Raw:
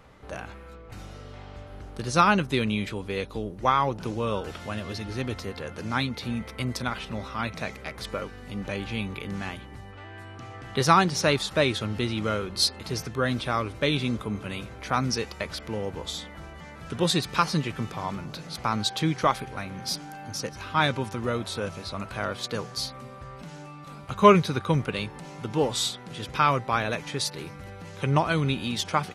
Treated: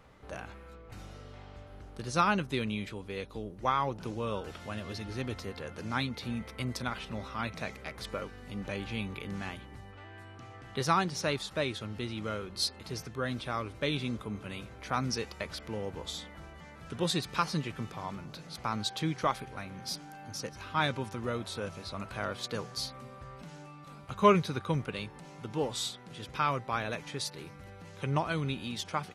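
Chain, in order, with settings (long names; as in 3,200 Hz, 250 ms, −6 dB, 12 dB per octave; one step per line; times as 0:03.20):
speech leveller within 3 dB 2 s
level −8 dB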